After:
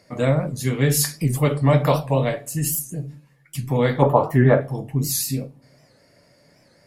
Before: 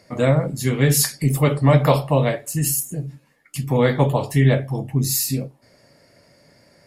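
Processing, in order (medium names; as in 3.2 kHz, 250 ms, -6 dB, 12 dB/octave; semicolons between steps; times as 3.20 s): 4.02–4.61 s: FFT filter 120 Hz 0 dB, 1.3 kHz +12 dB, 3 kHz -10 dB, 9.5 kHz -12 dB, 14 kHz 0 dB; simulated room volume 380 m³, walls furnished, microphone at 0.37 m; warped record 78 rpm, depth 160 cents; trim -2.5 dB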